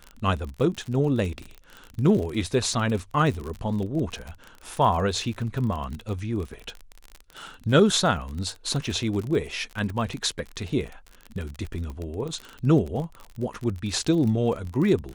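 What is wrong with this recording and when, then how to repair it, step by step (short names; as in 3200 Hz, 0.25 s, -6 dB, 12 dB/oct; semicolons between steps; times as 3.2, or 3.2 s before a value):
crackle 41/s -30 dBFS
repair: de-click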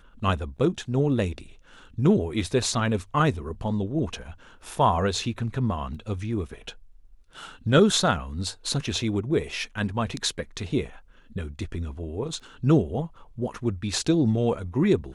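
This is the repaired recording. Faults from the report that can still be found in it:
none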